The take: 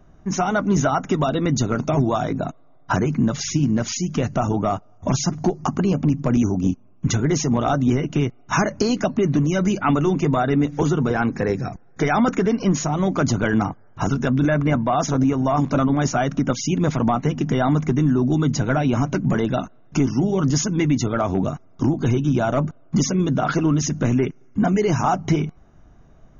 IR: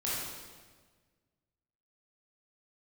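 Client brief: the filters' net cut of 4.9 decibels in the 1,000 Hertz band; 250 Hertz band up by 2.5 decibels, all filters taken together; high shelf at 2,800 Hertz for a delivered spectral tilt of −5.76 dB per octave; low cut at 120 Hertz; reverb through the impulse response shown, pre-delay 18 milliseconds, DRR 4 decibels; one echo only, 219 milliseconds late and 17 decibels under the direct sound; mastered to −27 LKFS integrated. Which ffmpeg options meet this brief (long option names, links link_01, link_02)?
-filter_complex "[0:a]highpass=120,equalizer=frequency=250:width_type=o:gain=4,equalizer=frequency=1000:width_type=o:gain=-8.5,highshelf=frequency=2800:gain=5,aecho=1:1:219:0.141,asplit=2[link_01][link_02];[1:a]atrim=start_sample=2205,adelay=18[link_03];[link_02][link_03]afir=irnorm=-1:irlink=0,volume=-10dB[link_04];[link_01][link_04]amix=inputs=2:normalize=0,volume=-9dB"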